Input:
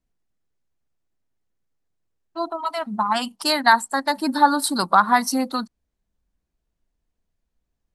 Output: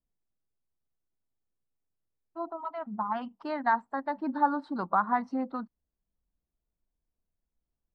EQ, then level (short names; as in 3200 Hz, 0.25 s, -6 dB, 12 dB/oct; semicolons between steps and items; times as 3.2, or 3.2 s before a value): LPF 1400 Hz 12 dB/oct; air absorption 100 m; -8.5 dB